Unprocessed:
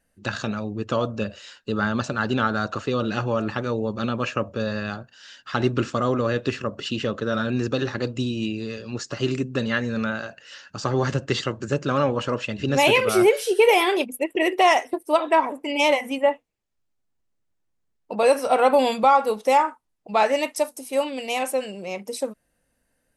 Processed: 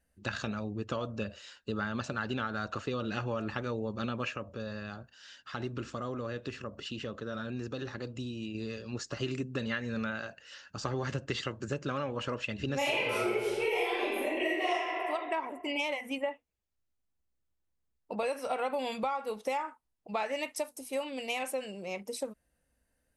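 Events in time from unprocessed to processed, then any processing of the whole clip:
0:04.32–0:08.55: downward compressor 1.5 to 1, threshold −38 dBFS
0:12.77–0:14.72: thrown reverb, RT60 1.4 s, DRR −10.5 dB
whole clip: dynamic equaliser 2,300 Hz, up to +5 dB, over −36 dBFS, Q 1.2; downward compressor, threshold −23 dBFS; parametric band 63 Hz +14.5 dB 0.43 octaves; level −7 dB

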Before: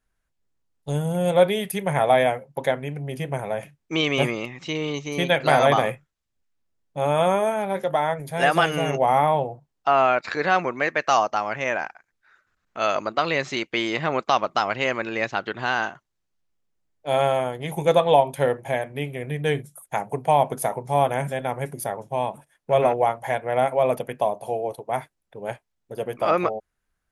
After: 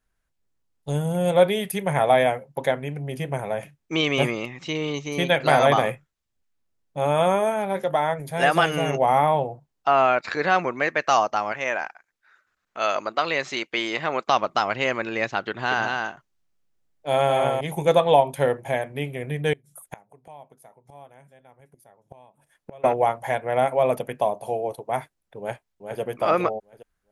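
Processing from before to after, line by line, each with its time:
0:11.52–0:14.27: low-shelf EQ 230 Hz −11 dB
0:15.49–0:17.61: single-tap delay 220 ms −3.5 dB
0:19.53–0:22.84: gate with flip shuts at −23 dBFS, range −26 dB
0:25.39–0:26.00: delay throw 410 ms, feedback 30%, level −5.5 dB

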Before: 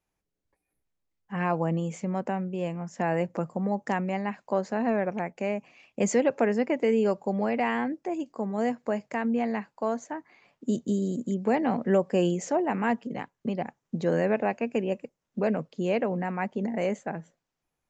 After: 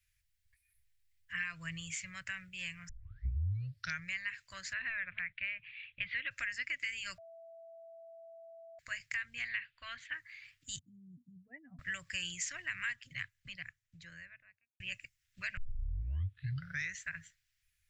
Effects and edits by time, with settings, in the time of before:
0:02.89: tape start 1.23 s
0:04.73–0:06.31: Butterworth low-pass 3,900 Hz 72 dB per octave
0:07.18–0:08.79: beep over 663 Hz −18.5 dBFS
0:09.48–0:10.14: high shelf with overshoot 4,500 Hz −12.5 dB, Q 3
0:10.79–0:11.79: expanding power law on the bin magnitudes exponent 2.7
0:12.93–0:14.80: fade out and dull
0:15.57: tape start 1.47 s
whole clip: elliptic band-stop filter 100–1,800 Hz, stop band 40 dB; parametric band 6,300 Hz −3.5 dB 0.28 octaves; downward compressor 4 to 1, threshold −43 dBFS; level +8 dB

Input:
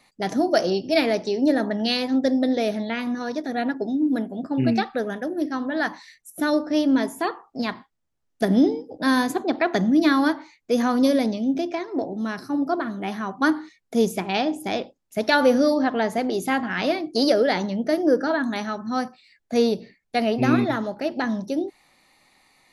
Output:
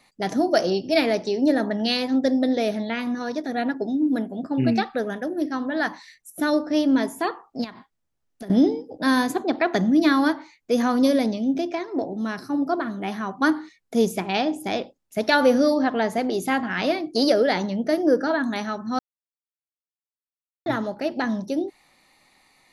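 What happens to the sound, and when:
0:07.64–0:08.50: downward compressor, threshold −34 dBFS
0:18.99–0:20.66: silence

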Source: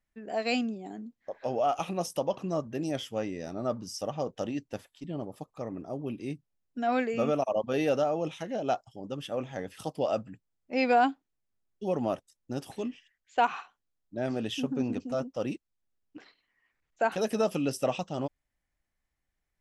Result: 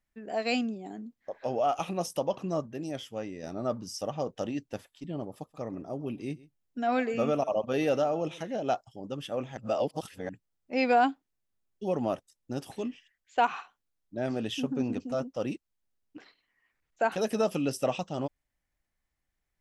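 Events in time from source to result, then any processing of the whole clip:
0:02.66–0:03.43: clip gain −4 dB
0:05.28–0:08.74: single-tap delay 130 ms −20.5 dB
0:09.57–0:10.29: reverse

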